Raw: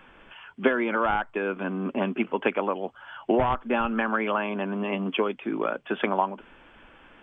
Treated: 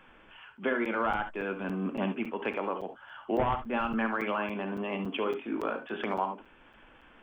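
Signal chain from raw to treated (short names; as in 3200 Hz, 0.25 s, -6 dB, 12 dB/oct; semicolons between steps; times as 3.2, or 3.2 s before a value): 1.19–2.16 tone controls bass +4 dB, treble +6 dB; transient shaper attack -6 dB, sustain -2 dB; 5.25–5.97 doubler 22 ms -5 dB; reverb, pre-delay 3 ms, DRR 7 dB; crackling interface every 0.28 s, samples 256, zero, from 0.57; gain -4.5 dB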